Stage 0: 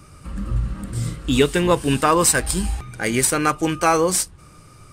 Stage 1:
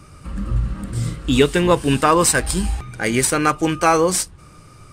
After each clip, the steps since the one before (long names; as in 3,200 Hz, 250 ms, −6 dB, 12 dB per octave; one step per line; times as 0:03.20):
high-shelf EQ 9,600 Hz −6 dB
level +2 dB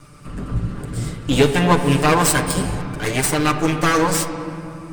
lower of the sound and its delayed copy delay 6.8 ms
on a send at −7 dB: convolution reverb RT60 3.2 s, pre-delay 7 ms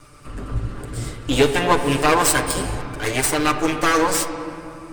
parametric band 170 Hz −12.5 dB 0.63 octaves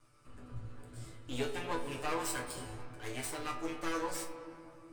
resonators tuned to a chord E2 sus4, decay 0.25 s
level −9 dB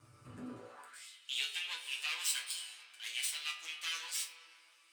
high-pass filter sweep 97 Hz → 3,000 Hz, 0:00.26–0:01.09
level +3.5 dB